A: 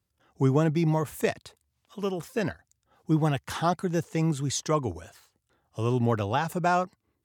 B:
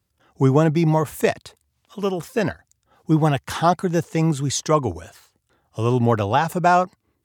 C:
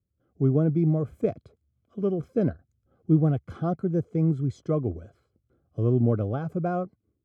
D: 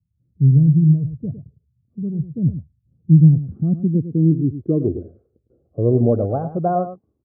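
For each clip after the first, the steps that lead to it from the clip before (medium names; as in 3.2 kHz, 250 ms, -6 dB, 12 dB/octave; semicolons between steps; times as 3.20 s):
dynamic bell 780 Hz, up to +3 dB, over -33 dBFS, Q 1.1; trim +6 dB
level rider gain up to 9 dB; boxcar filter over 48 samples; trim -5.5 dB
low-pass sweep 150 Hz -> 900 Hz, 2.89–6.85 s; delay 106 ms -11.5 dB; trim +4 dB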